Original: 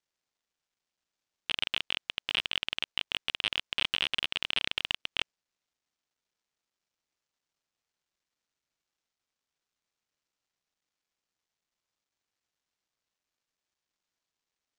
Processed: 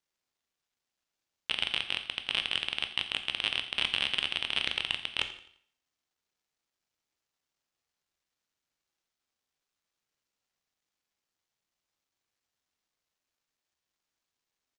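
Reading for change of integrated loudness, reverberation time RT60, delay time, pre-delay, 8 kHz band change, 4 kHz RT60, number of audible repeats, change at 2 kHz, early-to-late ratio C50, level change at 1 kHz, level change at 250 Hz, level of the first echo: +0.5 dB, 0.60 s, 86 ms, 6 ms, +1.0 dB, 0.65 s, 3, +0.5 dB, 11.0 dB, +1.0 dB, +1.0 dB, -17.0 dB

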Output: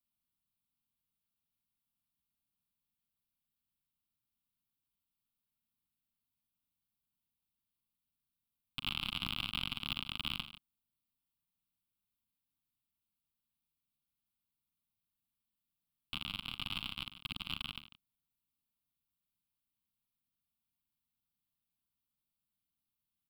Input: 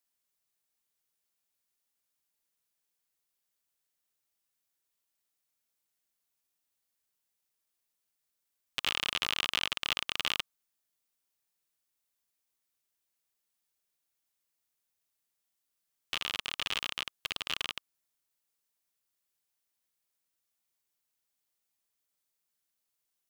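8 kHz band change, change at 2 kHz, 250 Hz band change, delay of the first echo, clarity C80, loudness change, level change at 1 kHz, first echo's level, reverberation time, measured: -15.5 dB, -8.0 dB, +3.0 dB, 40 ms, no reverb, -6.5 dB, -7.0 dB, -14.5 dB, no reverb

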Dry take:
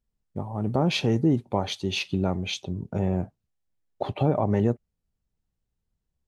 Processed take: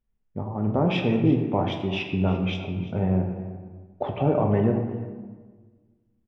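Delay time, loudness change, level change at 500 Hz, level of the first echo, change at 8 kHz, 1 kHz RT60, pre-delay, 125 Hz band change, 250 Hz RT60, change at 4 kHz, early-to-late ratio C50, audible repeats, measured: 344 ms, +1.5 dB, +2.0 dB, -17.0 dB, under -15 dB, 1.4 s, 3 ms, +2.0 dB, 1.9 s, -4.5 dB, 5.5 dB, 1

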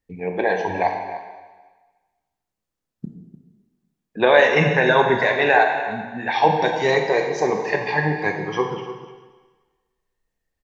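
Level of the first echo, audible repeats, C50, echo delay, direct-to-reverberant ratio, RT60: -14.5 dB, 1, 4.5 dB, 299 ms, 2.5 dB, 1.3 s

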